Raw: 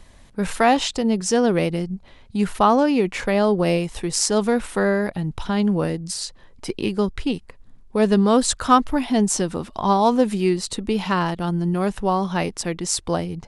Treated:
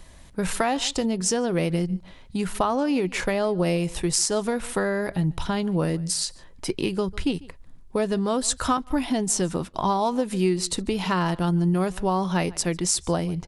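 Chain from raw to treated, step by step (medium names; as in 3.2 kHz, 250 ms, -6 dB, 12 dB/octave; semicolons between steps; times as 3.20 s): treble shelf 7.9 kHz +6.5 dB; echo from a far wall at 25 m, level -24 dB; compression 10:1, threshold -19 dBFS, peak gain reduction 11 dB; 8.77–9.74 s: gate -31 dBFS, range -16 dB; on a send at -16 dB: reverberation RT60 0.10 s, pre-delay 3 ms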